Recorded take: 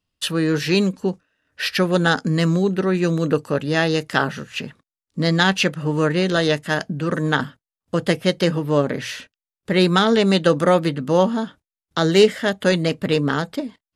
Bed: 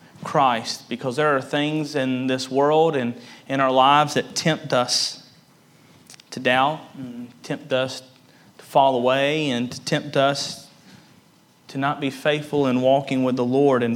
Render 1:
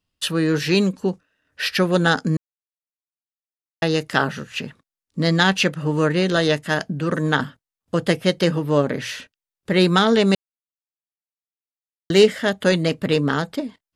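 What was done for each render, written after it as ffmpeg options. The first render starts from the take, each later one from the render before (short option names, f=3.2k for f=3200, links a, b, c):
-filter_complex "[0:a]asplit=5[a][b][c][d][e];[a]atrim=end=2.37,asetpts=PTS-STARTPTS,afade=t=out:st=2.366:d=0.004:c=hsin[f];[b]atrim=start=2.37:end=3.82,asetpts=PTS-STARTPTS,volume=0[g];[c]atrim=start=3.82:end=10.35,asetpts=PTS-STARTPTS,afade=t=in:d=0.004:c=hsin,afade=t=out:st=6.526:d=0.004:c=hsin[h];[d]atrim=start=10.35:end=12.1,asetpts=PTS-STARTPTS,volume=0[i];[e]atrim=start=12.1,asetpts=PTS-STARTPTS,afade=t=in:d=0.004:c=hsin[j];[f][g][h][i][j]concat=n=5:v=0:a=1"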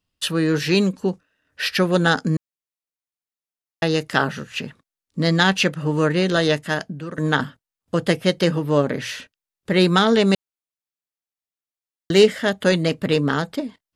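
-filter_complex "[0:a]asplit=2[a][b];[a]atrim=end=7.18,asetpts=PTS-STARTPTS,afade=t=out:st=6.61:d=0.57:silence=0.199526[c];[b]atrim=start=7.18,asetpts=PTS-STARTPTS,afade=t=in:d=0.004:c=hsin:silence=0.199526[d];[c][d]concat=n=2:v=0:a=1"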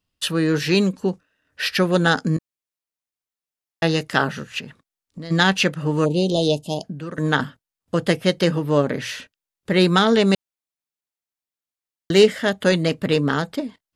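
-filter_complex "[0:a]asettb=1/sr,asplit=3[a][b][c];[a]atrim=end=2.354[d];[b]atrim=start=2.35:end=4.01,asetpts=PTS-STARTPTS,afade=t=in:d=0.004:c=qsin,afade=t=out:st=1.656:d=0.004:c=qsin,asplit=2[e][f];[f]adelay=18,volume=-9dB[g];[e][g]amix=inputs=2:normalize=0,atrim=end_sample=73206[h];[c]atrim=start=4.006[i];[d][h]acrossfade=d=0.004:c1=hsin:c2=qsin[j];[j][i]acrossfade=d=0.004:c1=qsin:c2=hsin,asplit=3[k][l][m];[k]afade=t=out:st=4.59:d=0.02[n];[l]acompressor=threshold=-31dB:ratio=6:attack=3.2:release=140:knee=1:detection=peak,afade=t=in:st=4.59:d=0.02,afade=t=out:st=5.3:d=0.02[o];[m]afade=t=in:st=5.3:d=0.02[p];[n][o][p]amix=inputs=3:normalize=0,asplit=3[q][r][s];[q]afade=t=out:st=6.04:d=0.02[t];[r]asuperstop=centerf=1600:order=8:qfactor=0.77,afade=t=in:st=6.04:d=0.02,afade=t=out:st=6.83:d=0.02[u];[s]afade=t=in:st=6.83:d=0.02[v];[t][u][v]amix=inputs=3:normalize=0"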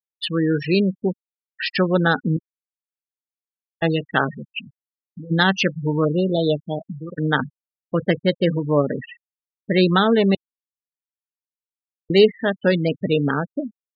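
-af "afftfilt=real='re*gte(hypot(re,im),0.112)':imag='im*gte(hypot(re,im),0.112)':win_size=1024:overlap=0.75,adynamicequalizer=threshold=0.0224:dfrequency=2400:dqfactor=0.7:tfrequency=2400:tqfactor=0.7:attack=5:release=100:ratio=0.375:range=2.5:mode=cutabove:tftype=highshelf"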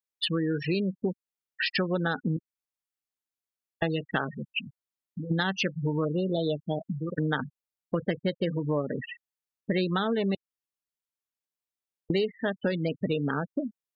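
-af "acompressor=threshold=-25dB:ratio=6"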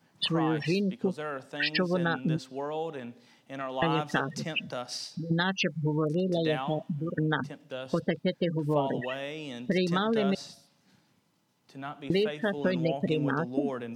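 -filter_complex "[1:a]volume=-16.5dB[a];[0:a][a]amix=inputs=2:normalize=0"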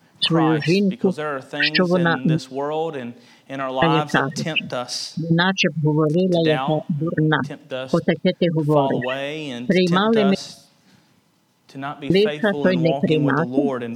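-af "volume=10dB"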